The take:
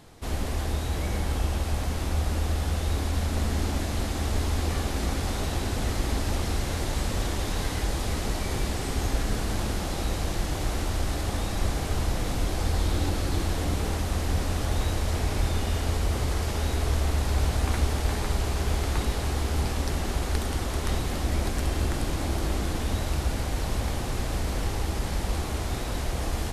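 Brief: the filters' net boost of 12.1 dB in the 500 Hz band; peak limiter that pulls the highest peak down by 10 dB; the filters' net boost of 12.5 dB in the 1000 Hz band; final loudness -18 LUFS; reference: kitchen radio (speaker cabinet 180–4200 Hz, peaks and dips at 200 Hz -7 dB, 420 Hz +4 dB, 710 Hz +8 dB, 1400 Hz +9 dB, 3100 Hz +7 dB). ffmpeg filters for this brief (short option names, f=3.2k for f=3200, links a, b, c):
-af "equalizer=f=500:t=o:g=9,equalizer=f=1k:t=o:g=6,alimiter=limit=-19.5dB:level=0:latency=1,highpass=180,equalizer=f=200:t=q:w=4:g=-7,equalizer=f=420:t=q:w=4:g=4,equalizer=f=710:t=q:w=4:g=8,equalizer=f=1.4k:t=q:w=4:g=9,equalizer=f=3.1k:t=q:w=4:g=7,lowpass=f=4.2k:w=0.5412,lowpass=f=4.2k:w=1.3066,volume=10dB"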